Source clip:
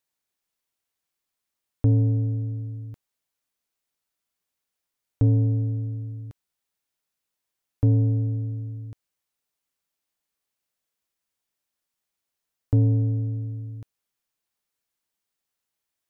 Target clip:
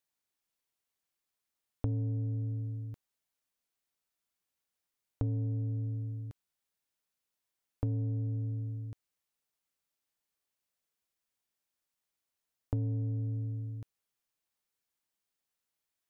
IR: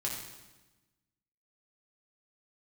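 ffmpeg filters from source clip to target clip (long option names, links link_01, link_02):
-af "acompressor=threshold=-27dB:ratio=4,volume=-4dB"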